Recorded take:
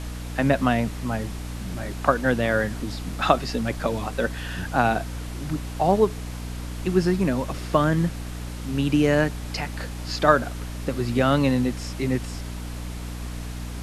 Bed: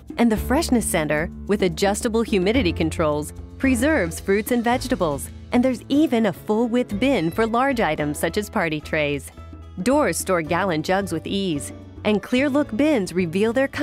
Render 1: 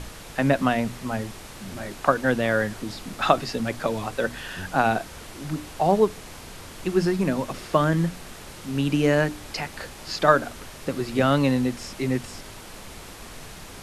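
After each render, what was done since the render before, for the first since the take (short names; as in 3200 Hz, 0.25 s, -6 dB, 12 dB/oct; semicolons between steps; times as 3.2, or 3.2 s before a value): notches 60/120/180/240/300 Hz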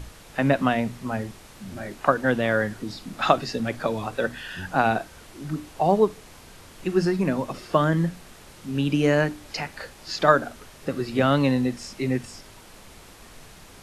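noise print and reduce 6 dB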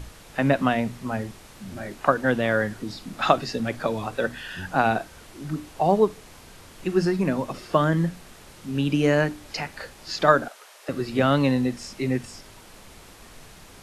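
10.48–10.89 HPF 530 Hz 24 dB/oct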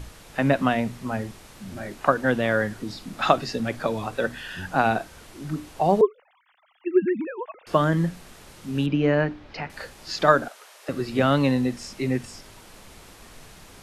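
6.01–7.67 sine-wave speech; 8.86–9.7 air absorption 250 m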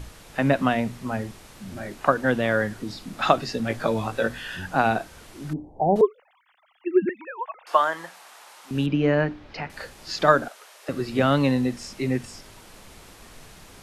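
3.68–4.58 doubler 18 ms -4 dB; 5.53–5.96 elliptic low-pass 850 Hz; 7.09–8.71 resonant high-pass 850 Hz, resonance Q 1.9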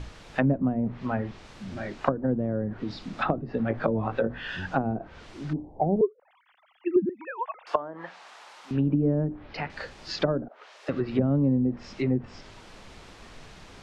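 LPF 5300 Hz 12 dB/oct; treble ducked by the level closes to 360 Hz, closed at -18.5 dBFS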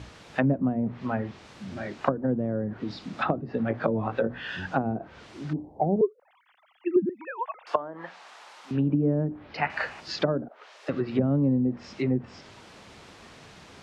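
HPF 86 Hz; 9.62–10 spectral gain 600–3000 Hz +9 dB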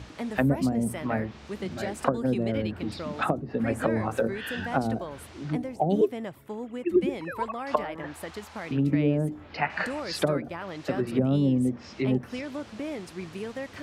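add bed -16 dB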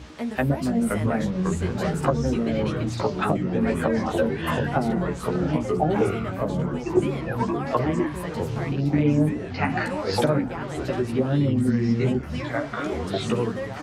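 doubler 13 ms -3 dB; echoes that change speed 0.421 s, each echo -4 st, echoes 3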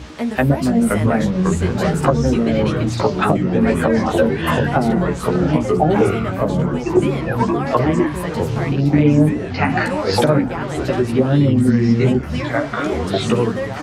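gain +7.5 dB; limiter -3 dBFS, peak gain reduction 2.5 dB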